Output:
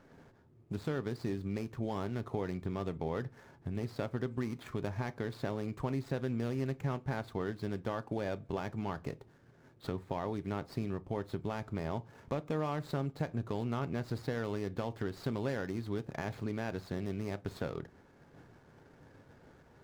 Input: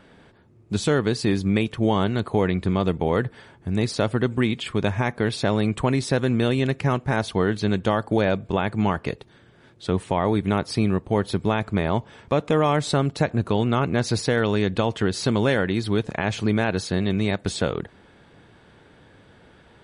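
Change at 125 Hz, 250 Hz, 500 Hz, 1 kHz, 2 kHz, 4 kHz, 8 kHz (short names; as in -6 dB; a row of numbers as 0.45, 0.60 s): -13.5, -14.5, -14.5, -15.0, -16.5, -20.5, -22.0 dB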